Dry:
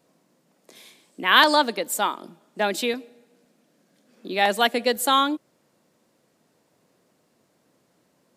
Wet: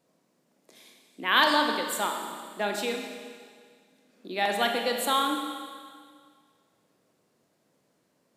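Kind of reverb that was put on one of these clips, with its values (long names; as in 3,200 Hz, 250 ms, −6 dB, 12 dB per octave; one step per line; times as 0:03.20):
four-comb reverb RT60 1.9 s, combs from 27 ms, DRR 3 dB
level −6.5 dB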